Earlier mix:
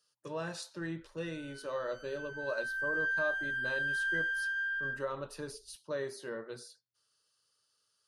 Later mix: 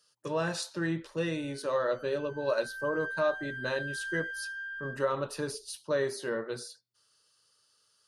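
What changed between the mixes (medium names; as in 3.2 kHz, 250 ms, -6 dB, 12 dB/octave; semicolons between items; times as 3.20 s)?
speech +7.5 dB; background -5.0 dB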